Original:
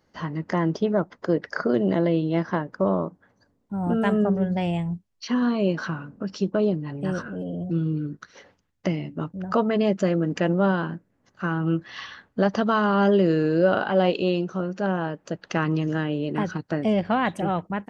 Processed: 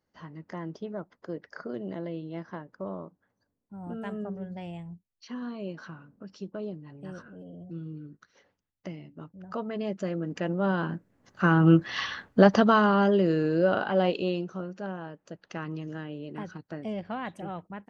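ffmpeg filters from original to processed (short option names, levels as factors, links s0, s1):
-af "volume=1.88,afade=t=in:st=9.33:d=1.27:silence=0.446684,afade=t=in:st=10.6:d=1.05:silence=0.237137,afade=t=out:st=12.24:d=0.84:silence=0.334965,afade=t=out:st=14.01:d=0.95:silence=0.398107"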